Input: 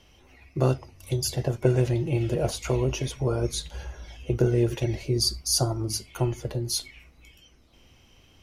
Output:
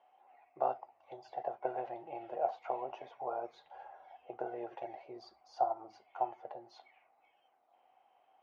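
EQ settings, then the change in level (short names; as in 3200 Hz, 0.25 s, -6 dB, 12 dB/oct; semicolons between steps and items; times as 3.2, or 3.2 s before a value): ladder band-pass 800 Hz, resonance 80%; air absorption 130 m; +3.5 dB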